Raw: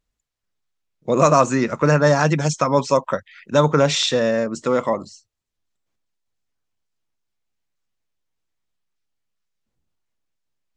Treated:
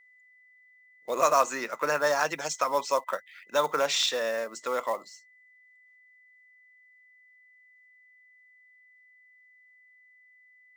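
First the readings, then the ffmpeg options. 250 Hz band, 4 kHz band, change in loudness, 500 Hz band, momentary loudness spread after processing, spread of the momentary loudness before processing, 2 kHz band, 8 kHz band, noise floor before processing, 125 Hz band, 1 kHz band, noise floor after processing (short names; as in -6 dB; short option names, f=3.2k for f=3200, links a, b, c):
-21.0 dB, -5.5 dB, -9.0 dB, -10.0 dB, 11 LU, 9 LU, -5.5 dB, -5.5 dB, -80 dBFS, -30.5 dB, -6.0 dB, -60 dBFS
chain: -af "highpass=640,acrusher=bits=5:mode=log:mix=0:aa=0.000001,aeval=exprs='val(0)+0.00282*sin(2*PI*2000*n/s)':c=same,volume=-5.5dB"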